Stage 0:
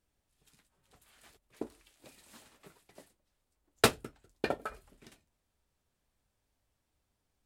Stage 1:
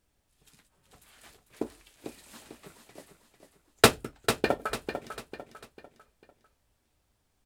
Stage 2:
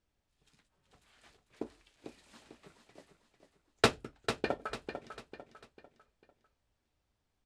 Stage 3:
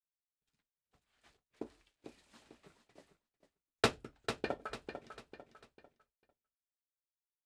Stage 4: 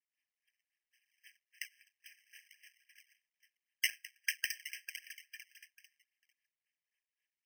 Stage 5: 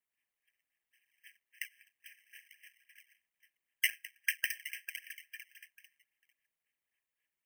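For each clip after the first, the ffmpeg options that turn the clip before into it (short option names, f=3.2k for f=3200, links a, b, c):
-filter_complex "[0:a]asplit=2[a][b];[b]acrusher=bits=4:mode=log:mix=0:aa=0.000001,volume=-9dB[c];[a][c]amix=inputs=2:normalize=0,aecho=1:1:447|894|1341|1788:0.376|0.147|0.0572|0.0223,volume=3.5dB"
-af "lowpass=6.3k,volume=-7dB"
-af "agate=range=-33dB:threshold=-59dB:ratio=3:detection=peak,volume=-4dB"
-af "acrusher=samples=30:mix=1:aa=0.000001:lfo=1:lforange=48:lforate=3.7,afftfilt=real='re*eq(mod(floor(b*sr/1024/1600),2),1)':imag='im*eq(mod(floor(b*sr/1024/1600),2),1)':win_size=1024:overlap=0.75,volume=11.5dB"
-af "equalizer=f=5k:w=1.6:g=-12,volume=4.5dB"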